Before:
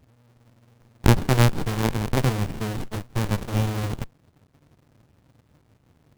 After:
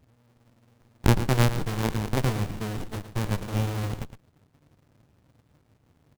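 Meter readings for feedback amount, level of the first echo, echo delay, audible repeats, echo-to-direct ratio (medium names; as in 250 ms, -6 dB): no regular repeats, -11.5 dB, 113 ms, 1, -11.5 dB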